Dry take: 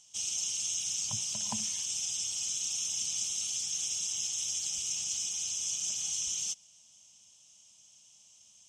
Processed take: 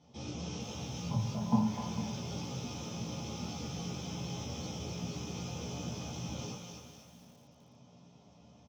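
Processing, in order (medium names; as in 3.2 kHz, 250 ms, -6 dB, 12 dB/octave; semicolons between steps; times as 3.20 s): low-pass 1.1 kHz 12 dB/octave; peaking EQ 180 Hz +3 dB 1.6 oct; hum notches 50/100/150 Hz; in parallel at +0.5 dB: compressor with a negative ratio -60 dBFS; on the sum: doubling 17 ms -4 dB; thinning echo 253 ms, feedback 41%, high-pass 790 Hz, level -3.5 dB; reverberation RT60 0.60 s, pre-delay 3 ms, DRR -3.5 dB; bit-crushed delay 452 ms, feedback 35%, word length 8-bit, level -13 dB; trim -4 dB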